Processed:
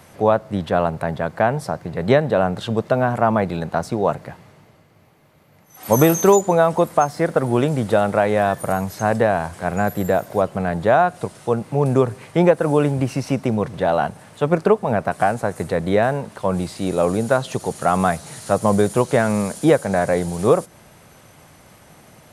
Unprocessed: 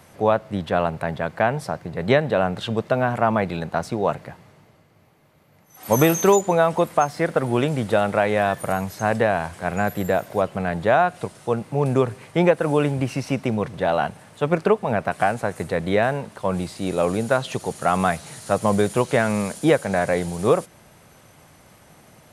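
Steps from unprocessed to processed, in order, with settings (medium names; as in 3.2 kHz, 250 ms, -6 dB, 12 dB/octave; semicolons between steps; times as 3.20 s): dynamic bell 2.6 kHz, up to -6 dB, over -40 dBFS, Q 0.99; trim +3 dB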